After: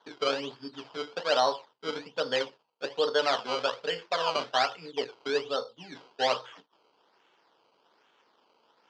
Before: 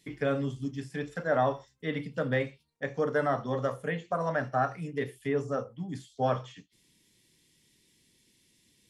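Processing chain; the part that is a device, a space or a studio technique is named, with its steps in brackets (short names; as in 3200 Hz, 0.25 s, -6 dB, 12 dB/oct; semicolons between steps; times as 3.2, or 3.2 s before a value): circuit-bent sampling toy (decimation with a swept rate 17×, swing 100% 1.2 Hz; speaker cabinet 420–5400 Hz, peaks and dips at 450 Hz +5 dB, 950 Hz +7 dB, 1400 Hz +3 dB, 2000 Hz -3 dB, 3100 Hz +8 dB, 4800 Hz +8 dB)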